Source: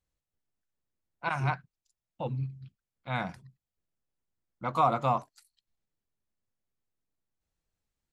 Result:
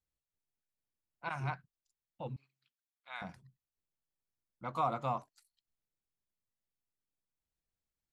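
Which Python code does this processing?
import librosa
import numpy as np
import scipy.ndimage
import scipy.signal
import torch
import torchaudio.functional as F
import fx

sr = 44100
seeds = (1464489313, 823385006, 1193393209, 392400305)

y = fx.highpass(x, sr, hz=1100.0, slope=12, at=(2.36, 3.22))
y = y * librosa.db_to_amplitude(-8.0)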